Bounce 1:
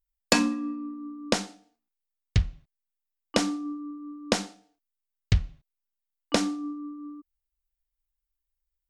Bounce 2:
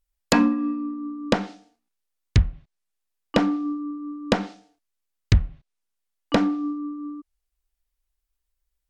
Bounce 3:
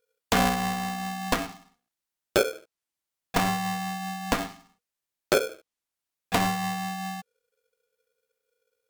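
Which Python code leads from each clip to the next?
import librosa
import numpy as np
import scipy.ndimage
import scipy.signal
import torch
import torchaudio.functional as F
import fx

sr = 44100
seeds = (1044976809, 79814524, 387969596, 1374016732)

y1 = np.clip(10.0 ** (15.5 / 20.0) * x, -1.0, 1.0) / 10.0 ** (15.5 / 20.0)
y1 = fx.env_lowpass_down(y1, sr, base_hz=1700.0, full_db=-23.5)
y1 = y1 * 10.0 ** (6.5 / 20.0)
y2 = fx.clip_asym(y1, sr, top_db=-31.0, bottom_db=-12.5)
y2 = y2 * np.sign(np.sin(2.0 * np.pi * 480.0 * np.arange(len(y2)) / sr))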